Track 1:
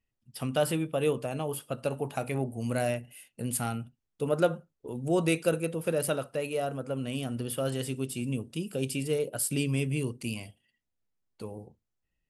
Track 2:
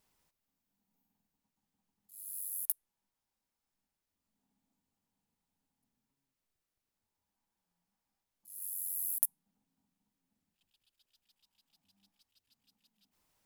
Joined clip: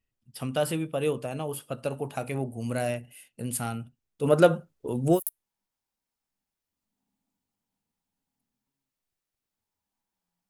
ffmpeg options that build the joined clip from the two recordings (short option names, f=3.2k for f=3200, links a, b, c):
-filter_complex "[0:a]asplit=3[a][b][c];[a]afade=t=out:st=4.23:d=0.02[d];[b]acontrast=80,afade=t=in:st=4.23:d=0.02,afade=t=out:st=5.2:d=0.02[e];[c]afade=t=in:st=5.2:d=0.02[f];[d][e][f]amix=inputs=3:normalize=0,apad=whole_dur=10.49,atrim=end=10.49,atrim=end=5.2,asetpts=PTS-STARTPTS[g];[1:a]atrim=start=2.55:end=7.92,asetpts=PTS-STARTPTS[h];[g][h]acrossfade=d=0.08:c1=tri:c2=tri"